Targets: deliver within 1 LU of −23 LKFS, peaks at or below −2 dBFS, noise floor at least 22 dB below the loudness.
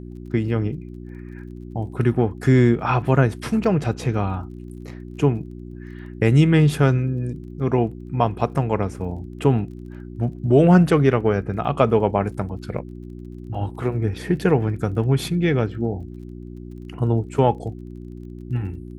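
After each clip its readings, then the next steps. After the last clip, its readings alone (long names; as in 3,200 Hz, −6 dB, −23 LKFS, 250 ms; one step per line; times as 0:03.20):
crackle rate 26 per second; mains hum 60 Hz; hum harmonics up to 360 Hz; level of the hum −35 dBFS; integrated loudness −21.0 LKFS; sample peak −2.5 dBFS; target loudness −23.0 LKFS
→ click removal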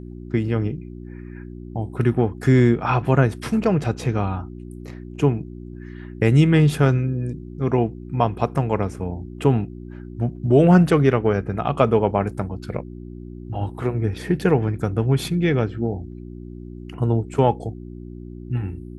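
crackle rate 0.053 per second; mains hum 60 Hz; hum harmonics up to 360 Hz; level of the hum −35 dBFS
→ hum removal 60 Hz, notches 6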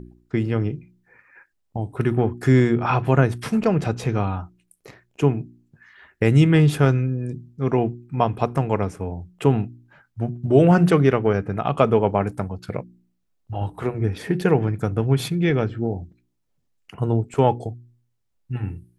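mains hum none found; integrated loudness −21.5 LKFS; sample peak −2.5 dBFS; target loudness −23.0 LKFS
→ level −1.5 dB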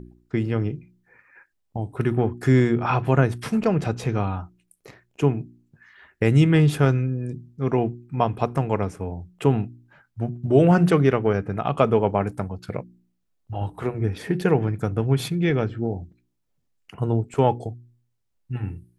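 integrated loudness −23.0 LKFS; sample peak −4.0 dBFS; background noise floor −73 dBFS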